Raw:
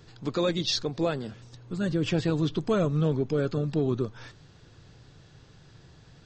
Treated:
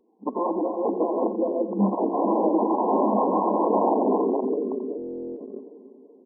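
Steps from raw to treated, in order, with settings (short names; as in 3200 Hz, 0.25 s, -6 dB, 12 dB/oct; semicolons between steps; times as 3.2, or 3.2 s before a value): regenerating reverse delay 0.19 s, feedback 77%, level -4 dB; wrapped overs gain 21 dB; 1.95–3.11 dispersion lows, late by 75 ms, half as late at 420 Hz; FFT band-pass 190–1100 Hz; gate -41 dBFS, range -19 dB; echo 86 ms -7.5 dB; in parallel at -1.5 dB: negative-ratio compressor -58 dBFS, ratio -1; on the sum: stuck buffer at 4.97, samples 1024, times 16; spectral expander 1.5:1; gain +8 dB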